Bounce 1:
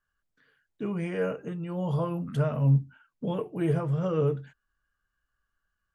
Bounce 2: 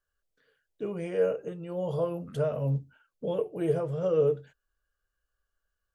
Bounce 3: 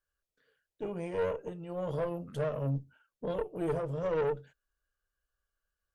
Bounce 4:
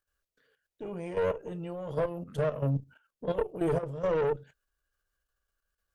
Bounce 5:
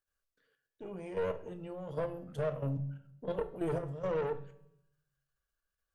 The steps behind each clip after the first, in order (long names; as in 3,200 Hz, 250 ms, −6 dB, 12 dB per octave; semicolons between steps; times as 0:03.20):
octave-band graphic EQ 125/250/500/1,000/2,000 Hz −6/−8/+8/−6/−5 dB
tube saturation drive 26 dB, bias 0.65
output level in coarse steps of 11 dB; level +6.5 dB
tuned comb filter 190 Hz, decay 0.99 s, mix 50%; on a send at −10.5 dB: convolution reverb RT60 0.65 s, pre-delay 8 ms